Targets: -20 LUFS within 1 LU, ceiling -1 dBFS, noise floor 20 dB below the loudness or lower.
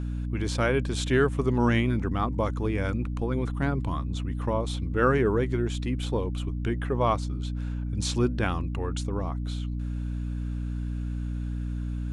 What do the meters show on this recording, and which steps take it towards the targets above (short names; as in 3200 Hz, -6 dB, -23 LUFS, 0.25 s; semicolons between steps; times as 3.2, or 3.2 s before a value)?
hum 60 Hz; harmonics up to 300 Hz; hum level -28 dBFS; loudness -28.5 LUFS; peak -10.0 dBFS; loudness target -20.0 LUFS
-> de-hum 60 Hz, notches 5; gain +8.5 dB